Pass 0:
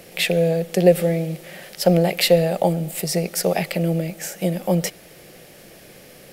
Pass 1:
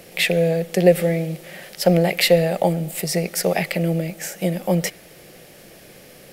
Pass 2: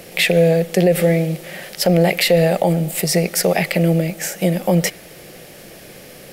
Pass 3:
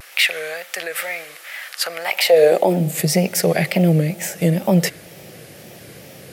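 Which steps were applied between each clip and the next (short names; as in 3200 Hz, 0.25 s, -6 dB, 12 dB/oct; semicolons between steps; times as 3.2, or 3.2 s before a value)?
dynamic EQ 2000 Hz, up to +5 dB, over -42 dBFS, Q 2.4
limiter -11 dBFS, peak gain reduction 9.5 dB; gain +5.5 dB
high-pass sweep 1300 Hz -> 98 Hz, 2.02–3.13; wow and flutter 120 cents; gain -1.5 dB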